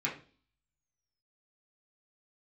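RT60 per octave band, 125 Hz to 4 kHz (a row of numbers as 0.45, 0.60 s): 0.55, 0.55, 0.45, 0.35, 0.35, 0.45 s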